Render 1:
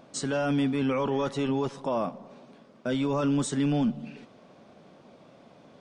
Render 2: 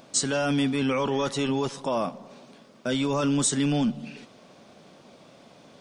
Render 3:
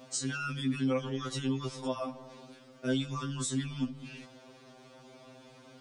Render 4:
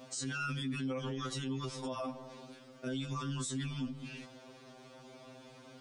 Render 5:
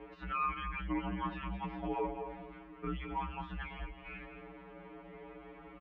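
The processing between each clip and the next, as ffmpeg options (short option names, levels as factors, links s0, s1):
-af "highshelf=f=3000:g=11.5,volume=1.12"
-af "acompressor=threshold=0.0355:ratio=6,afftfilt=real='re*2.45*eq(mod(b,6),0)':imag='im*2.45*eq(mod(b,6),0)':win_size=2048:overlap=0.75"
-af "alimiter=level_in=2:limit=0.0631:level=0:latency=1:release=27,volume=0.501"
-af "aecho=1:1:215:0.335,highpass=f=340:t=q:w=0.5412,highpass=f=340:t=q:w=1.307,lowpass=f=2600:t=q:w=0.5176,lowpass=f=2600:t=q:w=0.7071,lowpass=f=2600:t=q:w=1.932,afreqshift=-210,volume=1.78"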